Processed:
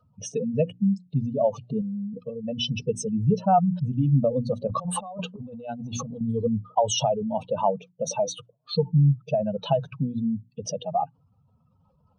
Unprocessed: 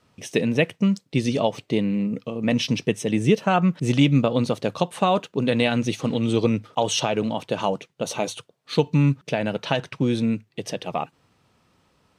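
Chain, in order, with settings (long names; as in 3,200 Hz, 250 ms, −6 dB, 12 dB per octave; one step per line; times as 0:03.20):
expanding power law on the bin magnitudes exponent 2.6
mains-hum notches 60/120/180/240/300/360 Hz
0:01.81–0:02.95: comb filter 2.3 ms, depth 49%
0:04.67–0:06.21: compressor whose output falls as the input rises −33 dBFS, ratio −1
phaser with its sweep stopped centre 830 Hz, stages 4
level +3 dB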